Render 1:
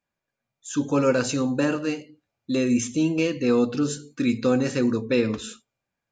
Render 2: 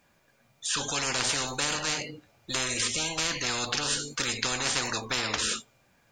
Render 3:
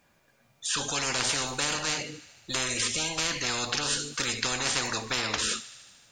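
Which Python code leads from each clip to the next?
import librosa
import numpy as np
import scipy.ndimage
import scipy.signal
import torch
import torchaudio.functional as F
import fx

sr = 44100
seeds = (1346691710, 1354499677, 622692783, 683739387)

y1 = fx.spectral_comp(x, sr, ratio=10.0)
y2 = fx.echo_wet_highpass(y1, sr, ms=76, feedback_pct=73, hz=1600.0, wet_db=-16.5)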